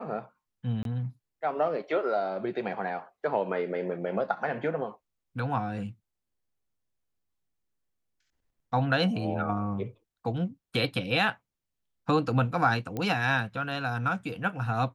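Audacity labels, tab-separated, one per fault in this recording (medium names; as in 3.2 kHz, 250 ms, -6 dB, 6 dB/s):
0.830000	0.850000	dropout 22 ms
12.970000	12.970000	pop -20 dBFS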